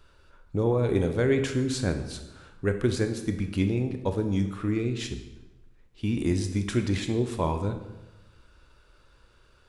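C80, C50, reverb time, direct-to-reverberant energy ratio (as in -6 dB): 11.5 dB, 9.0 dB, 1.0 s, 7.0 dB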